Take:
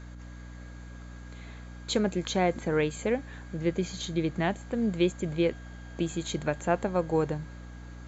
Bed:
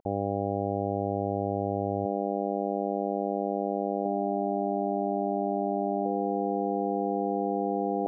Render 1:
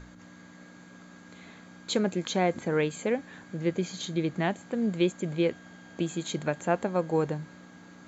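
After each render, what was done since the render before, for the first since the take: hum notches 60/120 Hz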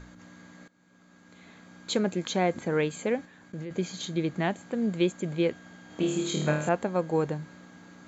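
0.68–1.89 s: fade in, from -19.5 dB; 3.25–3.71 s: level held to a coarse grid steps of 18 dB; 5.87–6.69 s: flutter echo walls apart 4.5 m, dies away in 0.65 s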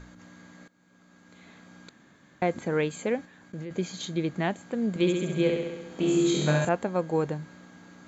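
1.89–2.42 s: room tone; 4.89–6.65 s: flutter echo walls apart 11.5 m, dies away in 1.1 s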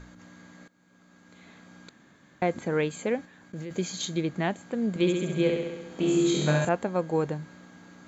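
3.56–4.21 s: treble shelf 5 kHz +9.5 dB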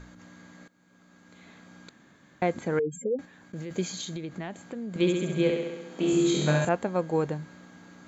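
2.79–3.19 s: spectral contrast enhancement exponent 3.6; 3.87–4.96 s: compression, threshold -32 dBFS; 5.51–6.13 s: high-pass 160 Hz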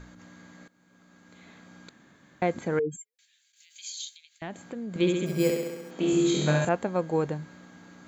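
2.96–4.42 s: inverse Chebyshev high-pass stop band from 640 Hz, stop band 70 dB; 5.26–5.91 s: careless resampling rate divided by 6×, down filtered, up hold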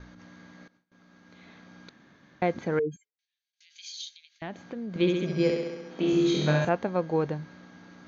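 steep low-pass 6.3 kHz 96 dB/octave; gate with hold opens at -52 dBFS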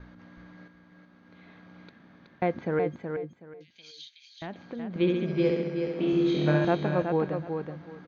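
distance through air 220 m; feedback delay 373 ms, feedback 21%, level -6 dB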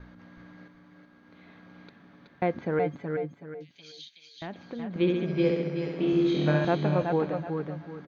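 delay 380 ms -10 dB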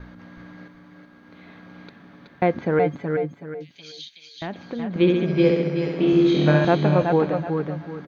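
trim +7 dB

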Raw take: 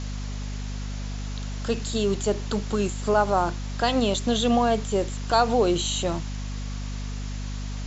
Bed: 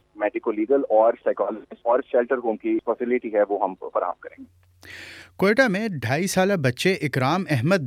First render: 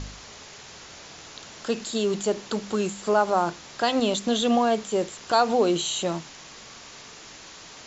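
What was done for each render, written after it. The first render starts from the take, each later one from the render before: de-hum 50 Hz, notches 5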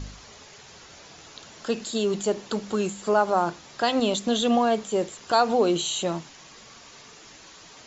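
noise reduction 6 dB, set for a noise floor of -45 dBFS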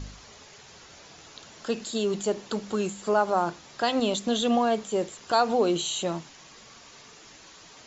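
trim -2 dB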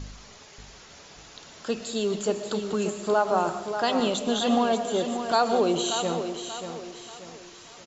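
on a send: feedback delay 584 ms, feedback 39%, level -8.5 dB; on the sum: algorithmic reverb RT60 0.74 s, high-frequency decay 0.8×, pre-delay 80 ms, DRR 10 dB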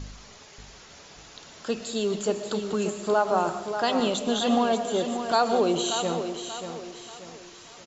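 no audible change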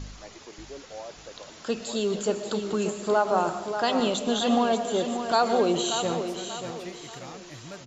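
add bed -23 dB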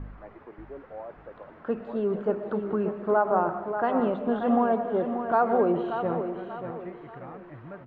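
low-pass 1.7 kHz 24 dB/octave

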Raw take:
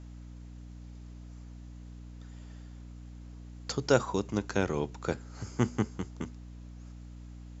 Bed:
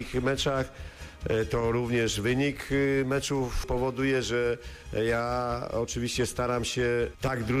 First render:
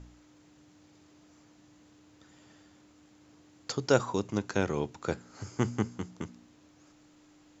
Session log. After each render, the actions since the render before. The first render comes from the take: de-hum 60 Hz, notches 4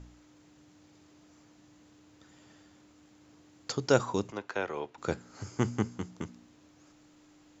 4.32–4.98 s: three-band isolator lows -17 dB, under 410 Hz, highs -15 dB, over 3.7 kHz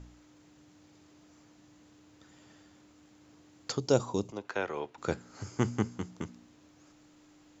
3.79–4.45 s: peaking EQ 1.7 kHz -12.5 dB 1.2 oct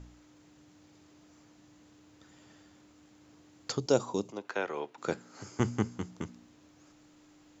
3.86–5.60 s: high-pass 170 Hz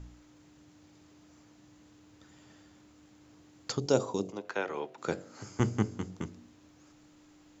bass shelf 150 Hz +4.5 dB; de-hum 47.19 Hz, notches 16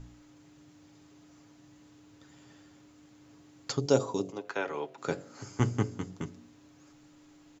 comb 7.2 ms, depth 40%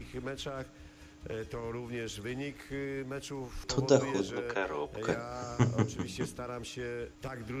add bed -12 dB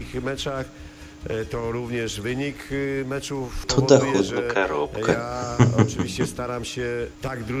trim +11.5 dB; peak limiter -1 dBFS, peak gain reduction 3 dB

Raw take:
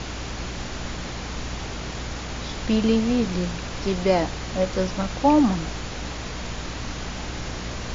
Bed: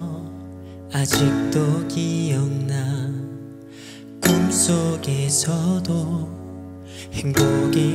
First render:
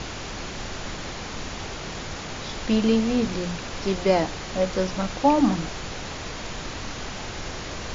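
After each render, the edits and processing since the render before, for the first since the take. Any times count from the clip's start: hum notches 60/120/180/240/300 Hz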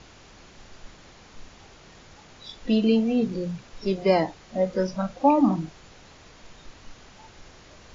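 noise print and reduce 16 dB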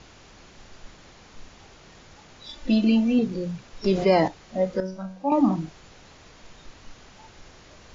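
2.48–3.19 s: comb 3.4 ms, depth 69%; 3.84–4.28 s: level flattener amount 50%; 4.80–5.32 s: feedback comb 94 Hz, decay 0.53 s, mix 80%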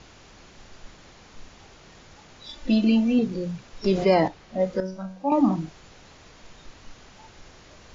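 4.14–4.60 s: distance through air 70 m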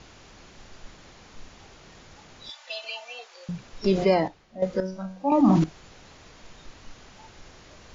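2.50–3.49 s: steep high-pass 670 Hz; 4.04–4.62 s: fade out quadratic, to -11 dB; 5.21–5.64 s: decay stretcher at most 22 dB/s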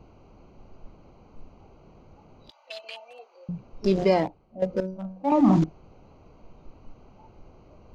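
local Wiener filter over 25 samples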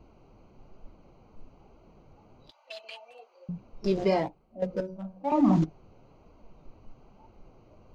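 flange 1.1 Hz, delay 2.8 ms, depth 7.1 ms, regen -41%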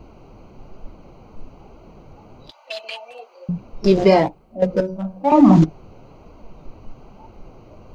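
trim +12 dB; peak limiter -2 dBFS, peak gain reduction 2 dB

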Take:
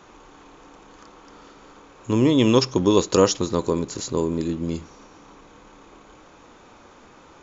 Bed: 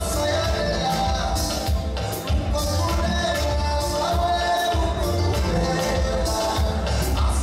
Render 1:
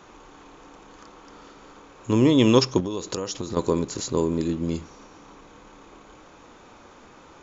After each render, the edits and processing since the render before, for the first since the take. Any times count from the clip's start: 2.80–3.57 s: compression 12:1, threshold -25 dBFS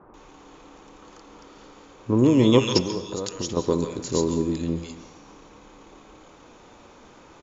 bands offset in time lows, highs 140 ms, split 1.4 kHz; plate-style reverb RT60 0.69 s, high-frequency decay 0.85×, pre-delay 120 ms, DRR 11 dB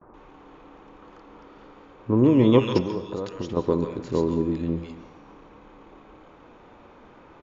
low-pass 2.4 kHz 12 dB/octave; gate with hold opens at -46 dBFS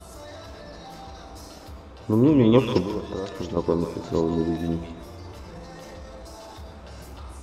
add bed -19.5 dB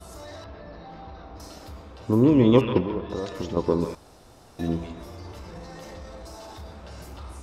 0.44–1.40 s: distance through air 290 m; 2.61–3.10 s: low-pass 3.1 kHz 24 dB/octave; 3.95–4.59 s: room tone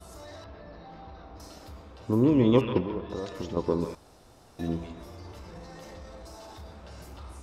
trim -4 dB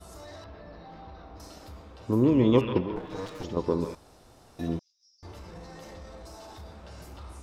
2.96–3.44 s: comb filter that takes the minimum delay 6.5 ms; 4.79–5.23 s: Butterworth band-pass 5.4 kHz, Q 5.7

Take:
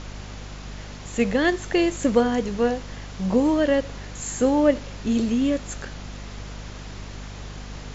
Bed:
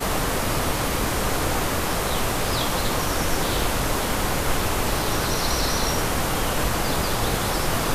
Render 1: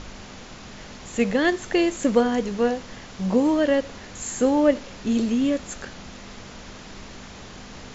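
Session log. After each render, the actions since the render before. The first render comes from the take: de-hum 50 Hz, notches 3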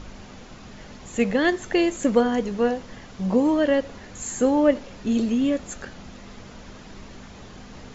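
noise reduction 6 dB, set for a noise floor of -42 dBFS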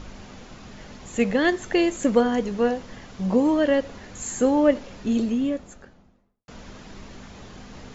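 4.95–6.48 s: studio fade out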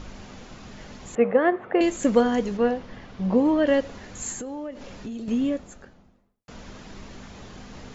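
1.15–1.81 s: cabinet simulation 160–2100 Hz, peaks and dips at 180 Hz -5 dB, 290 Hz -5 dB, 500 Hz +6 dB, 720 Hz +4 dB, 1.2 kHz +5 dB, 1.8 kHz -4 dB; 2.57–3.67 s: distance through air 140 m; 4.32–5.28 s: compression 10:1, threshold -31 dBFS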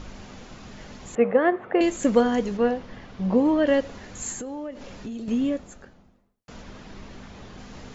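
6.62–7.59 s: distance through air 60 m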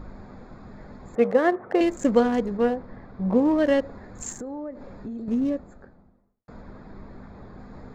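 local Wiener filter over 15 samples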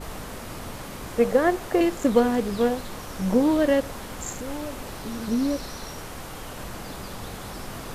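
add bed -14 dB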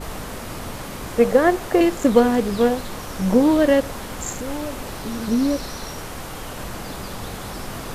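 trim +4.5 dB

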